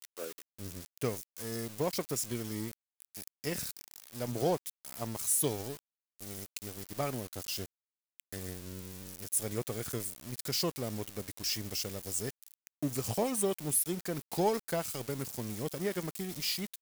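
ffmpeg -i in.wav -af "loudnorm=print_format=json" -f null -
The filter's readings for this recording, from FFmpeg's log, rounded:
"input_i" : "-35.2",
"input_tp" : "-17.4",
"input_lra" : "4.5",
"input_thresh" : "-45.5",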